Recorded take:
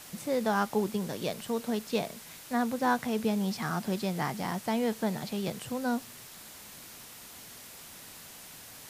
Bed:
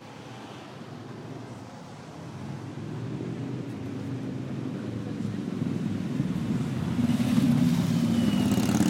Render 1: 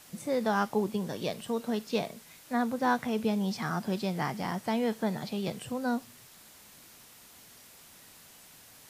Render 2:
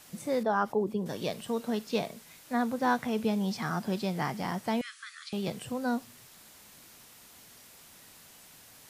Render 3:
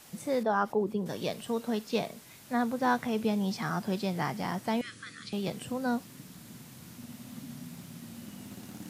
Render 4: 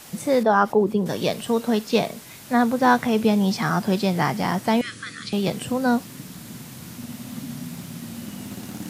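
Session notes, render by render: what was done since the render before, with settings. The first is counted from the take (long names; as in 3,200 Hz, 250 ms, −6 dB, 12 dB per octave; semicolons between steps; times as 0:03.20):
noise reduction from a noise print 6 dB
0:00.43–0:01.06: spectral envelope exaggerated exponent 1.5; 0:04.81–0:05.33: linear-phase brick-wall band-pass 1,100–11,000 Hz
mix in bed −21.5 dB
level +10 dB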